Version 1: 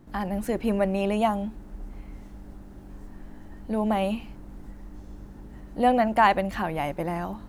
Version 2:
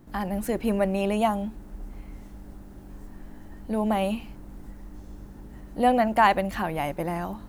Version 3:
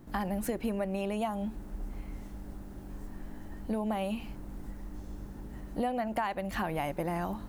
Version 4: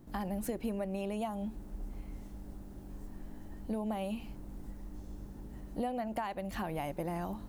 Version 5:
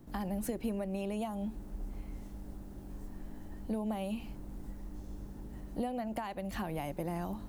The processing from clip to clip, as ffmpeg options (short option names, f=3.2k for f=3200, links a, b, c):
-af "highshelf=f=9.1k:g=7.5"
-af "acompressor=threshold=-28dB:ratio=16"
-af "equalizer=f=1.6k:t=o:w=1.6:g=-4.5,volume=-3dB"
-filter_complex "[0:a]acrossover=split=380|3000[a][b][c];[b]acompressor=threshold=-44dB:ratio=1.5[d];[a][d][c]amix=inputs=3:normalize=0,volume=1dB"